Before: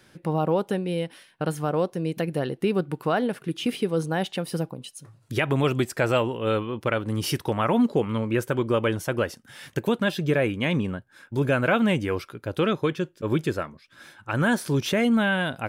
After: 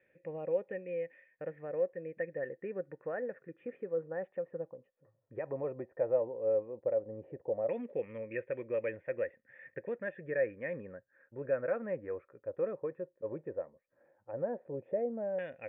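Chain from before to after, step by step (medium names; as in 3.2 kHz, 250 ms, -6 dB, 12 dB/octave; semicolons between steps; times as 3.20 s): LFO low-pass saw down 0.13 Hz 670–2800 Hz; cascade formant filter e; trim -4 dB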